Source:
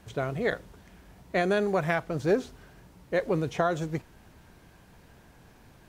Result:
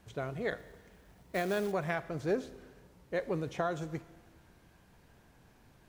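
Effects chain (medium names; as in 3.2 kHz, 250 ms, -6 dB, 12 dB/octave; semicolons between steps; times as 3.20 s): 0.58–1.72 s: short-mantissa float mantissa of 2-bit; Schroeder reverb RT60 1.5 s, combs from 27 ms, DRR 16 dB; trim -7 dB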